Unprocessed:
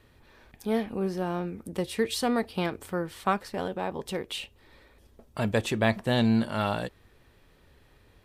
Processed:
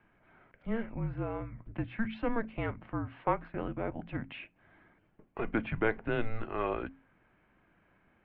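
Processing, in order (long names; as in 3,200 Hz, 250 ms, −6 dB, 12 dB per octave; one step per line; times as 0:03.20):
mains-hum notches 50/100/150/200/250/300/350/400/450/500 Hz
single-sideband voice off tune −230 Hz 230–2,700 Hz
level −3 dB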